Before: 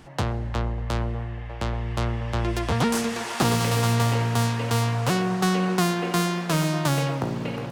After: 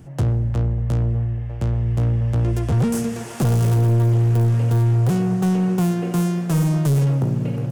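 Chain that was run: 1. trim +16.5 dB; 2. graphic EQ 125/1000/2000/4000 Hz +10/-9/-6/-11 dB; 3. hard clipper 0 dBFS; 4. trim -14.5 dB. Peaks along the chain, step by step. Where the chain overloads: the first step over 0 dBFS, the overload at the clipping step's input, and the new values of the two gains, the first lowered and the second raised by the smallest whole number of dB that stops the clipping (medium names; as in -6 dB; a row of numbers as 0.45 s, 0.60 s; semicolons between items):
+5.0 dBFS, +9.0 dBFS, 0.0 dBFS, -14.5 dBFS; step 1, 9.0 dB; step 1 +7.5 dB, step 4 -5.5 dB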